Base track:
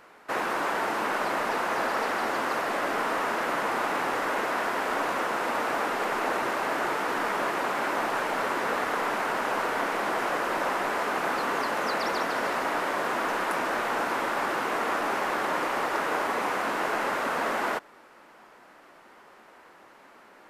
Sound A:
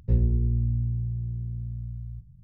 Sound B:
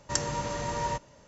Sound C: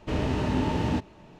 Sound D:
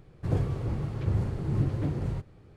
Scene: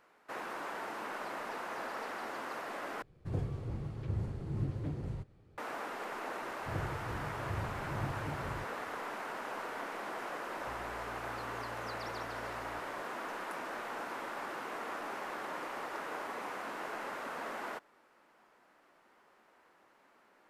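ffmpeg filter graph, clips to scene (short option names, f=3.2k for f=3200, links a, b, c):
-filter_complex "[4:a]asplit=2[a][b];[0:a]volume=-13dB[c];[1:a]acompressor=threshold=-37dB:ratio=6:attack=3.2:release=140:knee=1:detection=peak[d];[c]asplit=2[e][f];[e]atrim=end=3.024[g];[a]atrim=end=2.56,asetpts=PTS-STARTPTS,volume=-8.5dB[h];[f]atrim=start=5.576[i];[b]atrim=end=2.56,asetpts=PTS-STARTPTS,volume=-12dB,afade=t=in:d=0.004:c=hsin,afade=t=out:st=2.556:d=0.004:c=hsin,adelay=6430[j];[d]atrim=end=2.43,asetpts=PTS-STARTPTS,volume=-14dB,afade=t=in:d=0.004:c=hsin,afade=t=out:st=2.426:d=0.004:c=hsin,adelay=10590[k];[g][h]acrossfade=d=0.004:c1=hsin:c2=hsin[l];[l][i]acrossfade=d=0.004:c1=hsin:c2=hsin[m];[m][j][k]amix=inputs=3:normalize=0"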